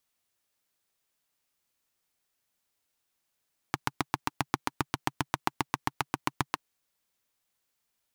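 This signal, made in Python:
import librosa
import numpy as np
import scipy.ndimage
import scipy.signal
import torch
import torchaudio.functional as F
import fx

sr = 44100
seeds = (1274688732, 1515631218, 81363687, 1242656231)

y = fx.engine_single(sr, seeds[0], length_s=2.83, rpm=900, resonances_hz=(140.0, 290.0, 890.0))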